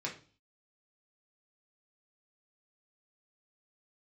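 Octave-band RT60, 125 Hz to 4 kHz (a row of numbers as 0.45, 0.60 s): 0.55, 0.50, 0.40, 0.35, 0.35, 0.45 s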